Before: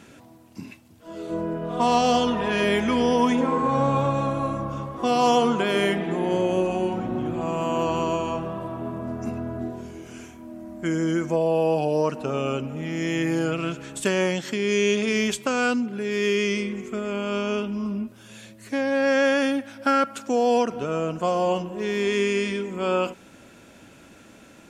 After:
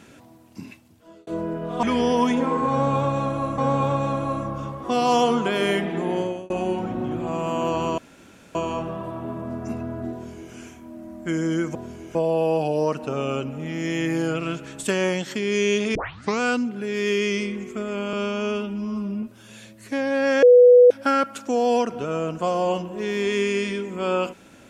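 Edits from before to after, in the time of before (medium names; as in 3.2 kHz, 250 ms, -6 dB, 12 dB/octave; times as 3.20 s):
0.65–1.27 s: fade out equal-power
1.83–2.84 s: delete
3.72–4.59 s: loop, 2 plays
6.28–6.64 s: fade out
8.12 s: insert room tone 0.57 s
9.70–10.10 s: copy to 11.32 s
15.12 s: tape start 0.45 s
17.30–18.03 s: stretch 1.5×
19.23–19.71 s: bleep 492 Hz -7.5 dBFS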